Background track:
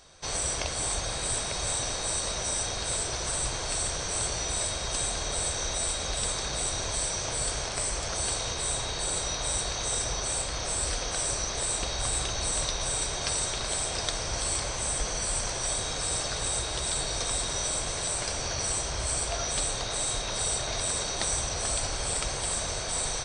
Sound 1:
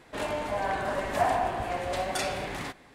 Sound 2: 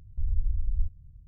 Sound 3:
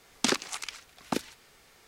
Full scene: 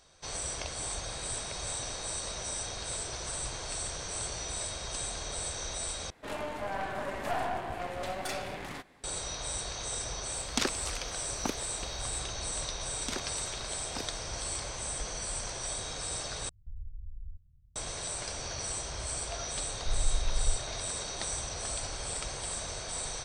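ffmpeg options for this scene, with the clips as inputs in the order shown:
-filter_complex "[3:a]asplit=2[s0][s1];[2:a]asplit=2[s2][s3];[0:a]volume=0.473[s4];[1:a]aeval=exprs='(tanh(17.8*val(0)+0.7)-tanh(0.7))/17.8':c=same[s5];[s2]alimiter=limit=0.0841:level=0:latency=1:release=101[s6];[s3]equalizer=f=67:t=o:w=0.77:g=-8.5[s7];[s4]asplit=3[s8][s9][s10];[s8]atrim=end=6.104[s11];[s5]atrim=end=2.94,asetpts=PTS-STARTPTS,volume=0.794[s12];[s9]atrim=start=9.036:end=16.494[s13];[s6]atrim=end=1.27,asetpts=PTS-STARTPTS,volume=0.237[s14];[s10]atrim=start=17.756[s15];[s0]atrim=end=1.87,asetpts=PTS-STARTPTS,volume=0.631,afade=t=in:d=0.004:c=hsin,afade=t=out:st=1.866:d=0.004:c=hsin,adelay=10330[s16];[s1]atrim=end=1.87,asetpts=PTS-STARTPTS,volume=0.266,afade=t=in:d=0.004:c=hsin,afade=t=out:st=1.866:d=0.004:c=hsin,adelay=566244S[s17];[s7]atrim=end=1.27,asetpts=PTS-STARTPTS,volume=0.891,afade=t=in:d=0.004:c=hsin,afade=t=out:st=1.266:d=0.004:c=hsin,adelay=19680[s18];[s11][s12]acrossfade=d=0.004:c1=hsin:c2=hsin[s19];[s19][s13]acrossfade=d=0.004:c1=hsin:c2=hsin[s20];[s20][s14]acrossfade=d=0.004:c1=hsin:c2=hsin[s21];[s21][s15]acrossfade=d=0.004:c1=hsin:c2=hsin[s22];[s22][s16][s17][s18]amix=inputs=4:normalize=0"

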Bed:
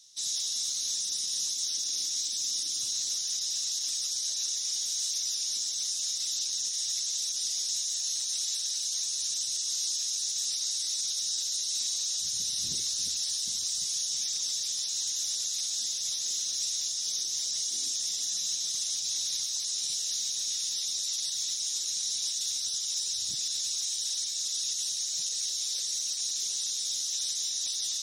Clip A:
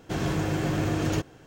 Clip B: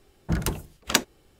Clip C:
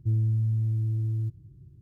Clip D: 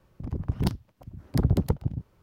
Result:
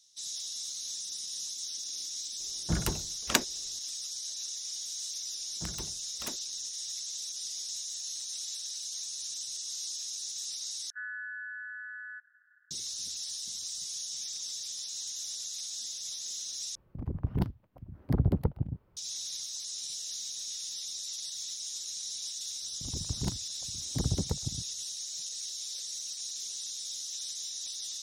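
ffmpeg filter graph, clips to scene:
-filter_complex "[2:a]asplit=2[s0][s1];[4:a]asplit=2[s2][s3];[0:a]volume=0.447[s4];[s1]aeval=exprs='(mod(4.73*val(0)+1,2)-1)/4.73':c=same[s5];[3:a]aeval=exprs='val(0)*sin(2*PI*1600*n/s)':c=same[s6];[s2]equalizer=f=7200:w=0.53:g=-15[s7];[s4]asplit=3[s8][s9][s10];[s8]atrim=end=10.904[s11];[s6]atrim=end=1.81,asetpts=PTS-STARTPTS,volume=0.224[s12];[s9]atrim=start=12.706:end=16.754[s13];[s7]atrim=end=2.22,asetpts=PTS-STARTPTS,volume=0.668[s14];[s10]atrim=start=18.966[s15];[s0]atrim=end=1.39,asetpts=PTS-STARTPTS,volume=0.596,afade=t=in:d=0.004:c=hsin,afade=t=out:st=1.386:d=0.004:c=hsin,adelay=2400[s16];[s5]atrim=end=1.39,asetpts=PTS-STARTPTS,volume=0.168,afade=t=in:d=0.004:c=hsin,afade=t=out:st=1.386:d=0.004:c=hsin,adelay=5320[s17];[s3]atrim=end=2.22,asetpts=PTS-STARTPTS,volume=0.398,afade=t=in:d=0.004:c=hsin,afade=t=out:st=2.216:d=0.004:c=hsin,adelay=22610[s18];[s11][s12]acrossfade=d=0.004:c1=hsin:c2=hsin[s19];[s19][s13]acrossfade=d=0.004:c1=hsin:c2=hsin[s20];[s20][s14]acrossfade=d=0.004:c1=hsin:c2=hsin[s21];[s21][s15]acrossfade=d=0.004:c1=hsin:c2=hsin[s22];[s22][s16][s17][s18]amix=inputs=4:normalize=0"

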